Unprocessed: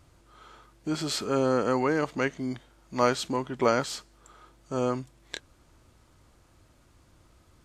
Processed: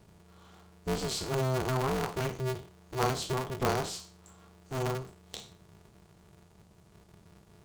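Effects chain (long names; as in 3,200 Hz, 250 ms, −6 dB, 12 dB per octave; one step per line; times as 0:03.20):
peak hold with a decay on every bin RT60 0.39 s
low-shelf EQ 220 Hz +9.5 dB
phaser with its sweep stopped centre 450 Hz, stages 6
ring modulator with a square carrier 130 Hz
level −4 dB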